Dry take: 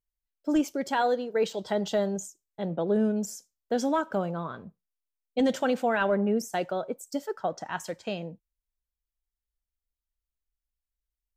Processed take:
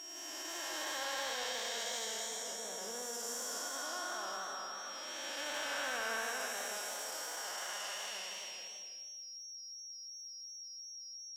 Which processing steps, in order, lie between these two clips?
spectral blur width 804 ms; on a send at -8 dB: reverberation RT60 0.40 s, pre-delay 141 ms; on the sum: formant-preserving pitch shift +2 st; high-pass 1.4 kHz 12 dB/octave; treble shelf 4.2 kHz +8 dB; band-stop 4.2 kHz, Q 23; in parallel at +0.5 dB: compression, threshold -55 dBFS, peak gain reduction 15 dB; on the sum: whistle 5.6 kHz -50 dBFS; saturation -32.5 dBFS, distortion -24 dB; modulated delay 160 ms, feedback 37%, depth 167 cents, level -8 dB; trim +3.5 dB

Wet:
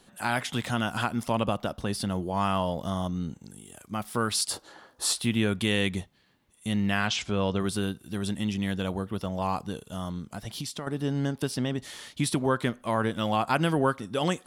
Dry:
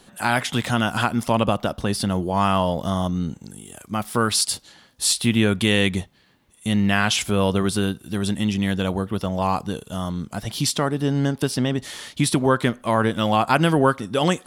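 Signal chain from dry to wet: 4.50–5.20 s: high-order bell 700 Hz +12.5 dB 2.7 oct; 7.07–7.60 s: low-pass 6.6 kHz 24 dB/octave; 10.18–10.87 s: compression 12:1, threshold -25 dBFS, peak gain reduction 9.5 dB; trim -7 dB

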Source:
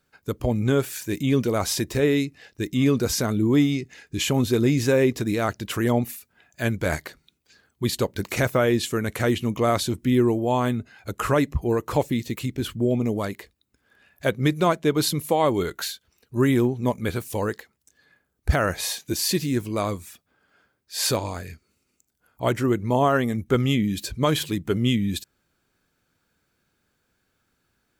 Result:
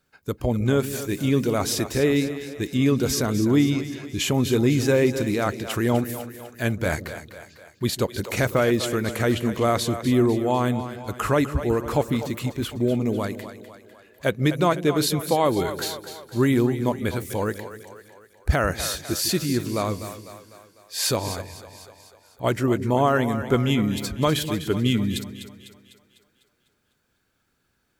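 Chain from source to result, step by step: on a send: two-band feedback delay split 420 Hz, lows 152 ms, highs 250 ms, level -11 dB; 21.41–22.44 s: on the sum: compression 3:1, threshold -37 dBFS, peak gain reduction 7 dB

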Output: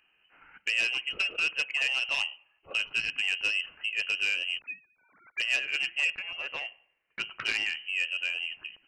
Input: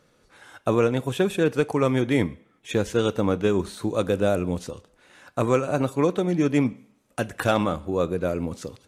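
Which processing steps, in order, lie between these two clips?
4.59–5.40 s: formants replaced by sine waves; 6.15–7.20 s: resonant low shelf 590 Hz -8 dB, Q 1.5; frequency inversion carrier 3 kHz; transformer saturation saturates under 2.7 kHz; trim -6.5 dB

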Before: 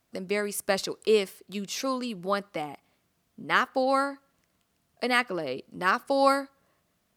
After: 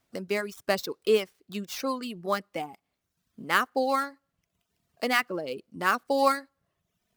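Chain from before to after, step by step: dead-time distortion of 0.05 ms; reverb removal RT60 0.81 s

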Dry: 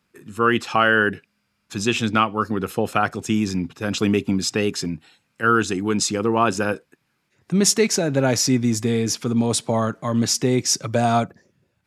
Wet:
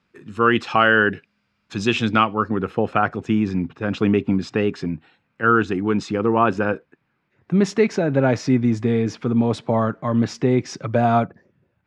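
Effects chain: low-pass 4.3 kHz 12 dB/octave, from 2.34 s 2.2 kHz; trim +1.5 dB

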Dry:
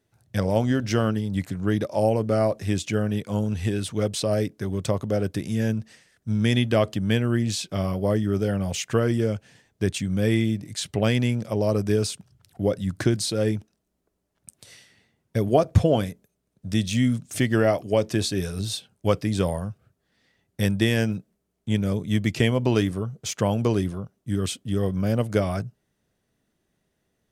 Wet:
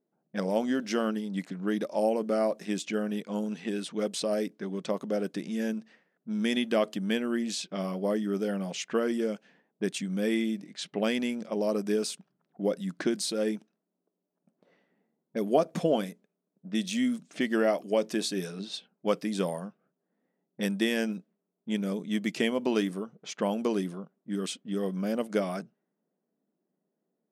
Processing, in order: brick-wall FIR high-pass 160 Hz; level-controlled noise filter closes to 750 Hz, open at -23 dBFS; trim -4.5 dB

